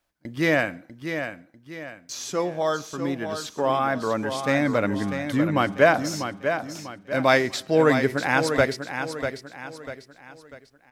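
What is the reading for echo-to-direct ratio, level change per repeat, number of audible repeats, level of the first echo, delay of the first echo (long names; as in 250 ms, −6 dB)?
−7.5 dB, −8.0 dB, 4, −8.0 dB, 645 ms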